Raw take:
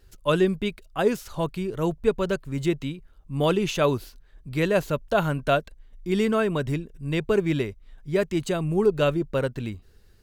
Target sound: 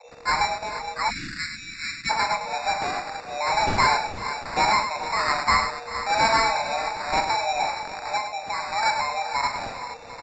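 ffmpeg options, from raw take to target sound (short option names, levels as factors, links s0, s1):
-filter_complex "[0:a]aeval=exprs='val(0)+0.5*0.0398*sgn(val(0))':c=same,bass=f=250:g=-15,treble=f=4000:g=-2,acrossover=split=150|2100[s0][s1][s2];[s1]dynaudnorm=f=280:g=13:m=2.82[s3];[s2]alimiter=level_in=1.41:limit=0.0631:level=0:latency=1,volume=0.708[s4];[s0][s3][s4]amix=inputs=3:normalize=0,asettb=1/sr,asplit=3[s5][s6][s7];[s5]atrim=end=8.174[s8];[s6]atrim=start=8.17:end=8.83,asetpts=PTS-STARTPTS,afade=t=in:d=0.004:c=qsin,afade=t=out:st=0.656:d=0.004:c=qsin,acompressor=threshold=0.0631:ratio=6[s9];[s7]atrim=start=8.826[s10];[s8][s9]acrossfade=d=0.004:c1=hsin:c2=qsin[s11];[s11][s10]acrossfade=d=0.004:c1=qsin:c2=hsin,asoftclip=type=hard:threshold=0.133,afreqshift=450,acrossover=split=710[s12][s13];[s12]aeval=exprs='val(0)*(1-1/2+1/2*cos(2*PI*1.2*n/s))':c=same[s14];[s13]aeval=exprs='val(0)*(1-1/2-1/2*cos(2*PI*1.2*n/s))':c=same[s15];[s14][s15]amix=inputs=2:normalize=0,acrusher=samples=14:mix=1:aa=0.000001,aecho=1:1:42|103|388|432|465|747:0.376|0.422|0.126|0.178|0.237|0.158,aresample=16000,aresample=44100,asplit=3[s16][s17][s18];[s16]afade=t=out:st=1.09:d=0.02[s19];[s17]asuperstop=centerf=680:order=8:qfactor=0.52,afade=t=in:st=1.09:d=0.02,afade=t=out:st=2.09:d=0.02[s20];[s18]afade=t=in:st=2.09:d=0.02[s21];[s19][s20][s21]amix=inputs=3:normalize=0,volume=1.5"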